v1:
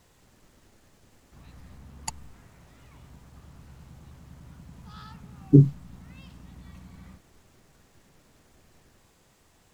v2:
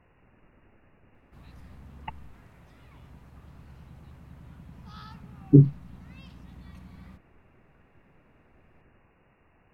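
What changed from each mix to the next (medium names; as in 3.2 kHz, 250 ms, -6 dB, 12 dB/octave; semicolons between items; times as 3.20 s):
speech: add brick-wall FIR low-pass 2.9 kHz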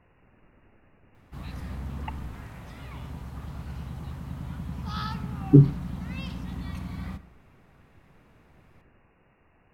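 background +11.5 dB; reverb: on, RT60 0.70 s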